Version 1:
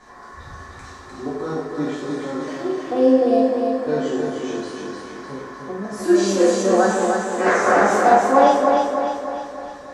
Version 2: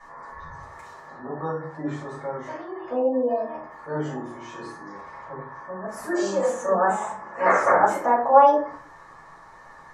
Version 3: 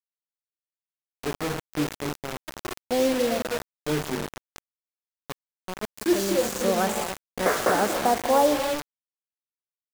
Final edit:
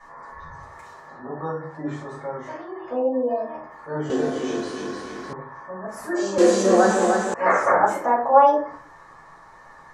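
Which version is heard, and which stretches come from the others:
2
4.10–5.33 s: from 1
6.38–7.34 s: from 1
not used: 3

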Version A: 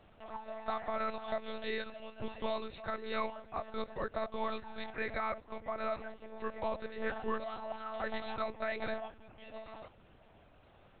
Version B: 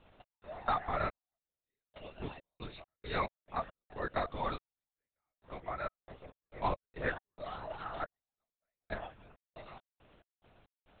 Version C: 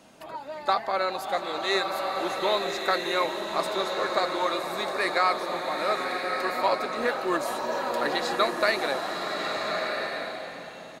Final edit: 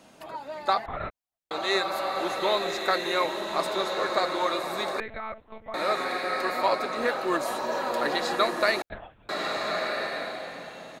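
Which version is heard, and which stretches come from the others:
C
0.86–1.51 s: from B
5.00–5.74 s: from A
8.82–9.29 s: from B

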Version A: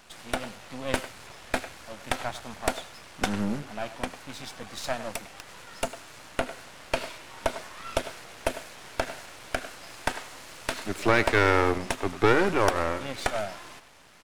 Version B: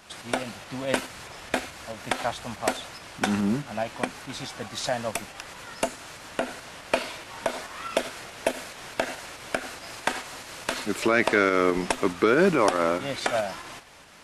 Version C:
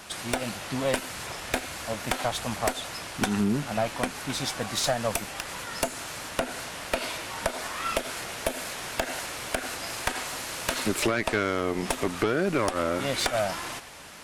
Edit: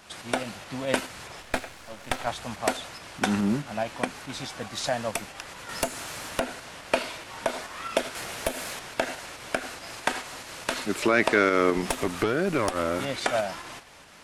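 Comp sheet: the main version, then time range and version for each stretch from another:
B
1.42–2.27 s: from A
5.69–6.40 s: from C
8.15–8.79 s: from C
11.82–13.05 s: from C

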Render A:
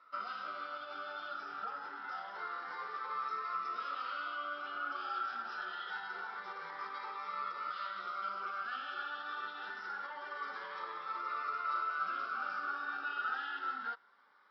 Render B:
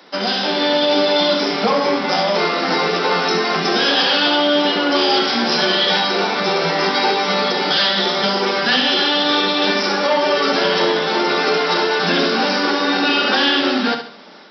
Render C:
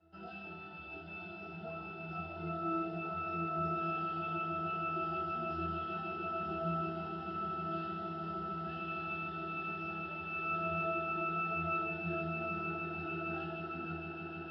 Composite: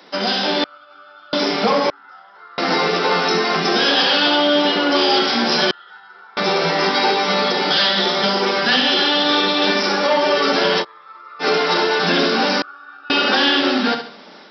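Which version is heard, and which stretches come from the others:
B
0.64–1.33 s: from A
1.90–2.58 s: from A
5.71–6.37 s: from A
10.82–11.42 s: from A, crossfade 0.06 s
12.62–13.10 s: from A
not used: C

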